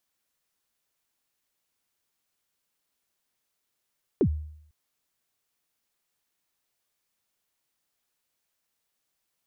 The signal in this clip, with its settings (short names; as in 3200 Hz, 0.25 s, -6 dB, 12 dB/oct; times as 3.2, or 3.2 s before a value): kick drum length 0.50 s, from 460 Hz, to 76 Hz, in 73 ms, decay 0.69 s, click off, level -16 dB